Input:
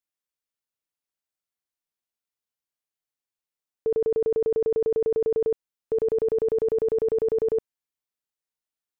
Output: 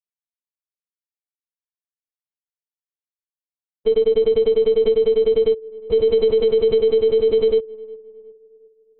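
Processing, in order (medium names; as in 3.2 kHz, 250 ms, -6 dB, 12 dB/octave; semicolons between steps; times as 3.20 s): word length cut 6-bit, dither none; on a send: filtered feedback delay 361 ms, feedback 46%, low-pass 1.3 kHz, level -18.5 dB; on the sum: LPC vocoder at 8 kHz pitch kept; trim +8 dB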